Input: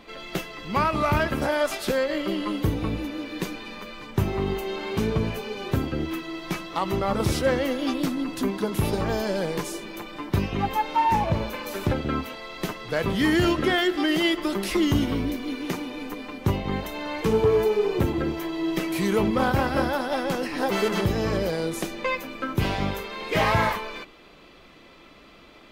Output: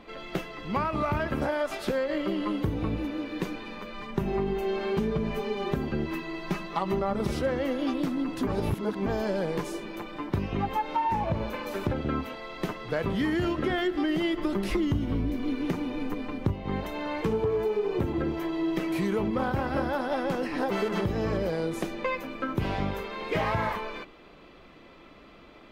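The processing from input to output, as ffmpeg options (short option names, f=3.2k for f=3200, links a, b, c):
-filter_complex "[0:a]asettb=1/sr,asplit=3[a][b][c];[a]atrim=end=3.944[d];[b]atrim=start=3.94:end=7.35,asetpts=PTS-STARTPTS,afade=t=in:d=0.004:c=qsin,afade=t=out:st=3.406:d=0.004:c=qsin,aecho=1:1:5:0.66,atrim=end_sample=150381[e];[c]atrim=start=7.346[f];[d][e]acrossfade=d=0.004:c1=hsin:c2=qsin[g];[g][f]acrossfade=d=0.004:c1=qsin:c2=hsin,asettb=1/sr,asplit=3[h][i][j];[h]atrim=end=13.704[k];[i]atrim=start=13.7:end=16.54,asetpts=PTS-STARTPTS,afade=t=in:d=0.004:c=qsin,afade=t=out:st=2.836:d=0.004:c=qsin,lowshelf=f=180:g=10[l];[j]atrim=start=16.536[m];[k][l]acrossfade=d=0.004:c1=hsin:c2=qsin[n];[n][m]acrossfade=d=0.004:c1=qsin:c2=hsin,asplit=3[o][p][q];[o]atrim=end=8.472[r];[p]atrim=start=8.468:end=9.062,asetpts=PTS-STARTPTS,areverse[s];[q]atrim=start=9.058[t];[r][s]acrossfade=d=0.004:c1=hsin:c2=hsin[u];[u][t]acrossfade=d=0.004:c1=hsin:c2=hsin,highshelf=f=3.3k:g=-10.5,acompressor=threshold=-24dB:ratio=6"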